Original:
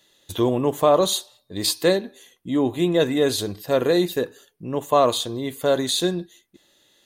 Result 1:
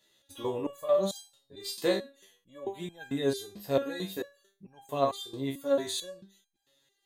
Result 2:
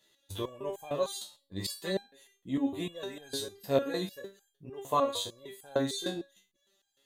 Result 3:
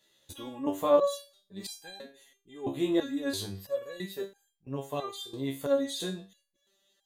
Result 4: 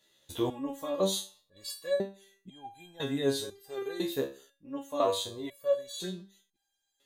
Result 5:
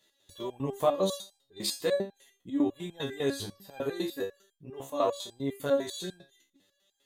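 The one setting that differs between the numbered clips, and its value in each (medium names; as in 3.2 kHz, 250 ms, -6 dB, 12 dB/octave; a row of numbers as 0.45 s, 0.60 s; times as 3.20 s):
resonator arpeggio, rate: 4.5 Hz, 6.6 Hz, 3 Hz, 2 Hz, 10 Hz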